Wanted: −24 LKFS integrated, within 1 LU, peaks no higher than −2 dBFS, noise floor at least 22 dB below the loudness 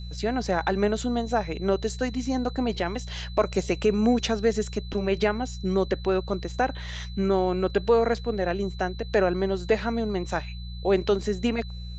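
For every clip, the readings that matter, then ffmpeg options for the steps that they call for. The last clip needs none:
mains hum 60 Hz; hum harmonics up to 180 Hz; level of the hum −34 dBFS; interfering tone 4,000 Hz; level of the tone −46 dBFS; integrated loudness −26.5 LKFS; sample peak −9.0 dBFS; target loudness −24.0 LKFS
→ -af "bandreject=frequency=60:width_type=h:width=4,bandreject=frequency=120:width_type=h:width=4,bandreject=frequency=180:width_type=h:width=4"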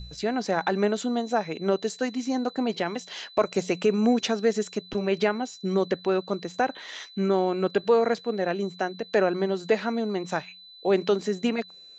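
mains hum none found; interfering tone 4,000 Hz; level of the tone −46 dBFS
→ -af "bandreject=frequency=4000:width=30"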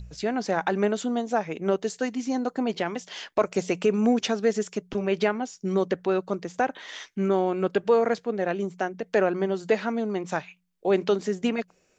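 interfering tone none found; integrated loudness −26.5 LKFS; sample peak −9.0 dBFS; target loudness −24.0 LKFS
→ -af "volume=2.5dB"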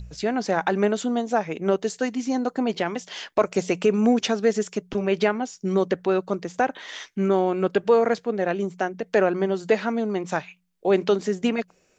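integrated loudness −24.0 LKFS; sample peak −6.5 dBFS; background noise floor −63 dBFS

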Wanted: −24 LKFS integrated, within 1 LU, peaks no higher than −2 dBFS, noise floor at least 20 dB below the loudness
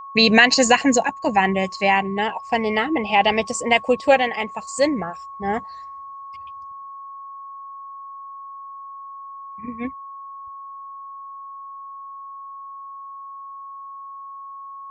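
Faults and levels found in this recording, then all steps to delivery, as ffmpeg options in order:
interfering tone 1,100 Hz; level of the tone −34 dBFS; integrated loudness −19.5 LKFS; sample peak −2.5 dBFS; target loudness −24.0 LKFS
→ -af "bandreject=frequency=1100:width=30"
-af "volume=-4.5dB"

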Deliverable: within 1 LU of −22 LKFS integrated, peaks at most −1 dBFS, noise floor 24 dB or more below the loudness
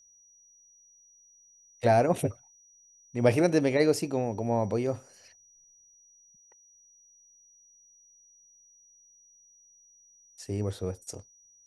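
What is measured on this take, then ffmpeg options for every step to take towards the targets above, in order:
interfering tone 5,800 Hz; level of the tone −57 dBFS; integrated loudness −27.5 LKFS; sample peak −9.5 dBFS; target loudness −22.0 LKFS
→ -af "bandreject=frequency=5800:width=30"
-af "volume=5.5dB"

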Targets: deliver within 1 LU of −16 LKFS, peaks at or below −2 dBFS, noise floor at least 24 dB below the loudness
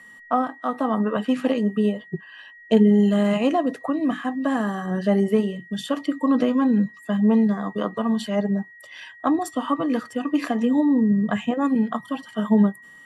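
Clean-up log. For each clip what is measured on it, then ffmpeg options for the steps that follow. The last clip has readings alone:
interfering tone 1,900 Hz; level of the tone −44 dBFS; integrated loudness −22.5 LKFS; sample peak −6.0 dBFS; target loudness −16.0 LKFS
→ -af "bandreject=frequency=1900:width=30"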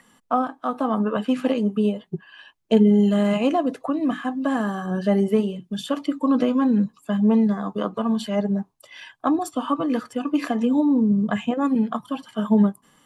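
interfering tone none found; integrated loudness −22.5 LKFS; sample peak −6.0 dBFS; target loudness −16.0 LKFS
→ -af "volume=6.5dB,alimiter=limit=-2dB:level=0:latency=1"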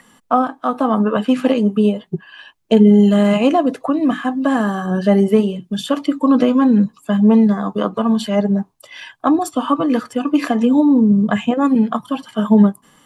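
integrated loudness −16.0 LKFS; sample peak −2.0 dBFS; background noise floor −56 dBFS

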